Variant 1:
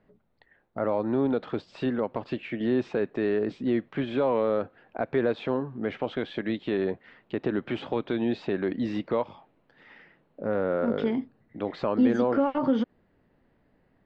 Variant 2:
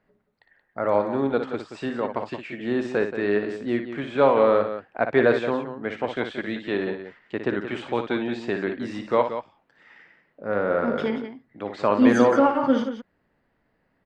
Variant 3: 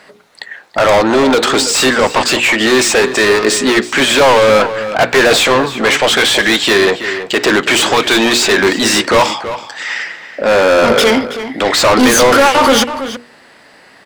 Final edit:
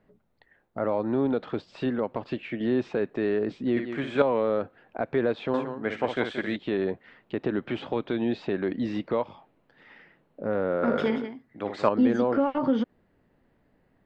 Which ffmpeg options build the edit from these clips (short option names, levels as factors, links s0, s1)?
-filter_complex "[1:a]asplit=3[s0][s1][s2];[0:a]asplit=4[s3][s4][s5][s6];[s3]atrim=end=3.772[s7];[s0]atrim=start=3.768:end=4.222[s8];[s4]atrim=start=4.218:end=5.542[s9];[s1]atrim=start=5.538:end=6.562[s10];[s5]atrim=start=6.558:end=10.832[s11];[s2]atrim=start=10.828:end=11.892[s12];[s6]atrim=start=11.888[s13];[s7][s8]acrossfade=d=0.004:c1=hsin:c2=hsin[s14];[s14][s9]acrossfade=d=0.004:c1=hsin:c2=hsin[s15];[s15][s10]acrossfade=d=0.004:c1=hsin:c2=hsin[s16];[s16][s11]acrossfade=d=0.004:c1=hsin:c2=hsin[s17];[s17][s12]acrossfade=d=0.004:c1=hsin:c2=hsin[s18];[s18][s13]acrossfade=d=0.004:c1=hsin:c2=hsin"